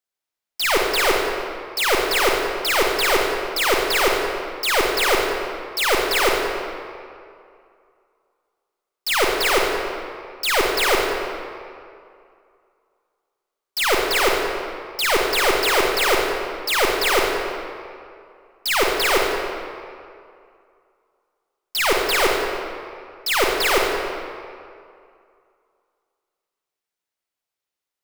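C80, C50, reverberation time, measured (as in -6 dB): 1.5 dB, 0.0 dB, 2.4 s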